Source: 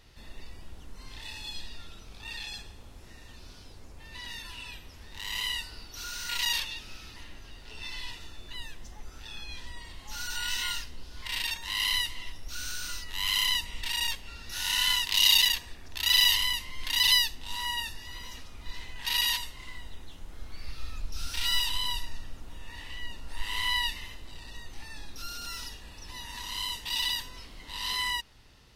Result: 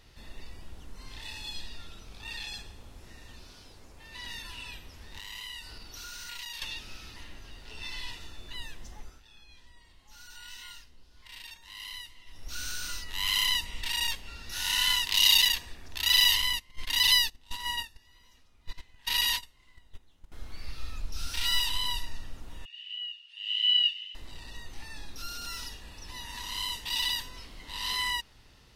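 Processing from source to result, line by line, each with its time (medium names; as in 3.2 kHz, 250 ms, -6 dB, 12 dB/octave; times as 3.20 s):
3.43–4.19 s: bass shelf 220 Hz -5.5 dB
5.18–6.62 s: compression 3:1, threshold -40 dBFS
8.99–12.49 s: dip -14 dB, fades 0.23 s
16.42–20.32 s: gate -34 dBFS, range -18 dB
22.65–24.15 s: ladder band-pass 3 kHz, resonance 90%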